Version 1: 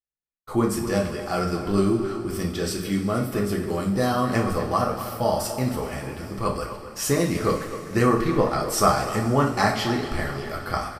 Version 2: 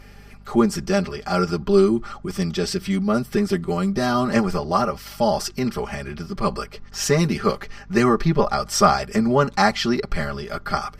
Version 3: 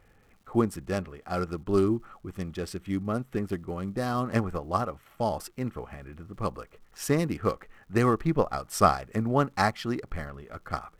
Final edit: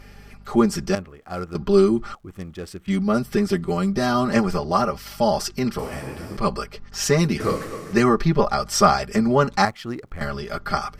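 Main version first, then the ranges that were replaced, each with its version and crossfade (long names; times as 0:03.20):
2
0:00.95–0:01.55: punch in from 3
0:02.15–0:02.88: punch in from 3
0:05.79–0:06.37: punch in from 1
0:07.40–0:07.93: punch in from 1
0:09.65–0:10.21: punch in from 3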